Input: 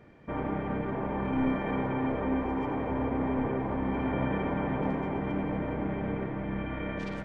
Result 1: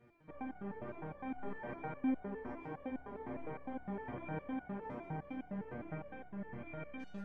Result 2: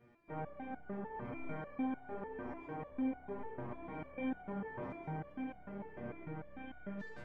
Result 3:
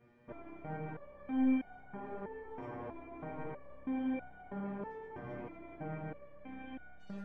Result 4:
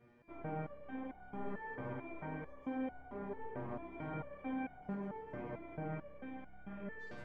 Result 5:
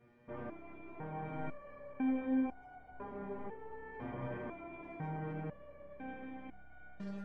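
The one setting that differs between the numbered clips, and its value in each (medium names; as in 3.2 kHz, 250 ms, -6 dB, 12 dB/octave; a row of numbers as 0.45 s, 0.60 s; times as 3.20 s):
resonator arpeggio, rate: 9.8 Hz, 6.7 Hz, 3.1 Hz, 4.5 Hz, 2 Hz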